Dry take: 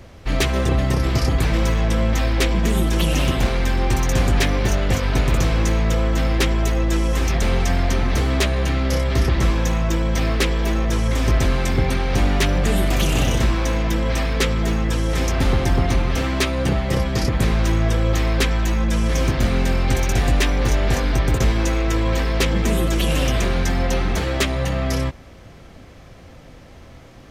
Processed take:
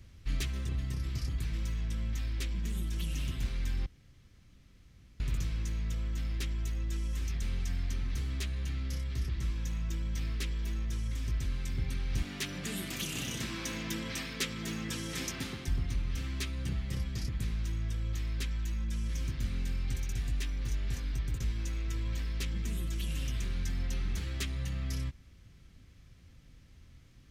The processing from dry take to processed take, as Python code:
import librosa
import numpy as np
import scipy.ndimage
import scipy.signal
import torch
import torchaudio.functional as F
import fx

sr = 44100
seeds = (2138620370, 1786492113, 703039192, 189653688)

y = fx.highpass(x, sr, hz=210.0, slope=12, at=(12.22, 15.68))
y = fx.edit(y, sr, fx.room_tone_fill(start_s=3.86, length_s=1.34), tone=tone)
y = fx.tone_stack(y, sr, knobs='6-0-2')
y = fx.rider(y, sr, range_db=10, speed_s=0.5)
y = y * librosa.db_to_amplitude(-1.0)